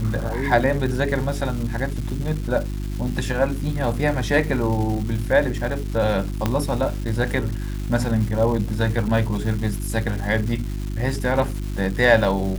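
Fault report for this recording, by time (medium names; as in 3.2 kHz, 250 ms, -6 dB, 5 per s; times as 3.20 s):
crackle 580 per s -30 dBFS
hum 50 Hz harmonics 7 -27 dBFS
6.46 s: pop -7 dBFS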